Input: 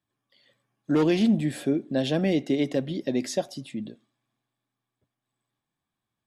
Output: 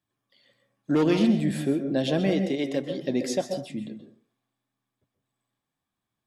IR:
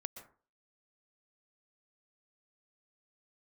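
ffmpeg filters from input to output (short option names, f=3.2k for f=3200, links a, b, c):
-filter_complex "[0:a]asettb=1/sr,asplit=3[a][b][c];[a]atrim=end=2.334[d];[b]atrim=start=2.33:end=3.02,asetpts=PTS-STARTPTS,afade=t=in:d=0.004:c=qsin,afade=t=out:st=0.686:d=0.004:c=qsin,lowshelf=f=210:g=-10[e];[c]atrim=start=3.016[f];[d][e]acrossfade=d=0.004:c1=hsin:c2=qsin[g];[g][f]acrossfade=d=0.004:c1=qsin:c2=hsin[h];[1:a]atrim=start_sample=2205,asetrate=41895,aresample=44100[i];[h][i]afir=irnorm=-1:irlink=0,volume=3dB"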